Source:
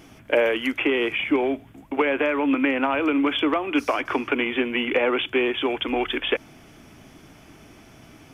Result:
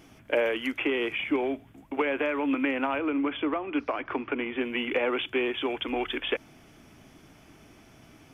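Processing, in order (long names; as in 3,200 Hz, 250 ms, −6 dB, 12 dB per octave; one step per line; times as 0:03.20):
0:02.98–0:04.61: high-frequency loss of the air 330 metres
level −5.5 dB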